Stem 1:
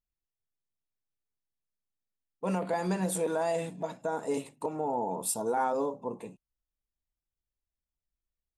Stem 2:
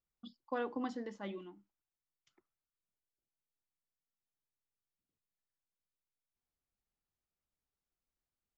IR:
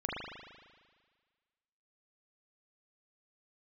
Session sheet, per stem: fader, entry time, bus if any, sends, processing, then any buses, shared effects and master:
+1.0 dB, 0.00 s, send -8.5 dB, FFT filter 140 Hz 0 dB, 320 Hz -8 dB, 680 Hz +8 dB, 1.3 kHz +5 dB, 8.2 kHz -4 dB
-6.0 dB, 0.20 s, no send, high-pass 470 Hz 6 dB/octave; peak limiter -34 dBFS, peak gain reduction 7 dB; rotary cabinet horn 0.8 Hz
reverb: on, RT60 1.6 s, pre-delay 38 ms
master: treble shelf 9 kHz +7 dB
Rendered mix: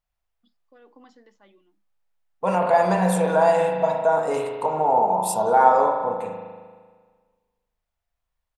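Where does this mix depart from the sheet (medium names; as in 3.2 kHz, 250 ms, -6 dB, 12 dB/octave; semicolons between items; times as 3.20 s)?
stem 1: send -8.5 dB -> -1 dB; master: missing treble shelf 9 kHz +7 dB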